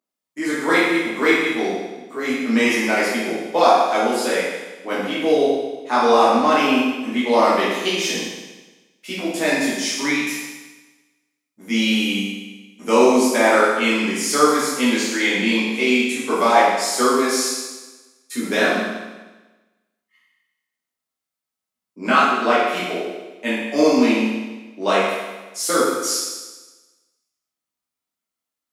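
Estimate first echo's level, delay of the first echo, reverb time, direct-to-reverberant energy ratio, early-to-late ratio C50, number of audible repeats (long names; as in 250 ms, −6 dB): no echo audible, no echo audible, 1.2 s, −9.0 dB, −1.0 dB, no echo audible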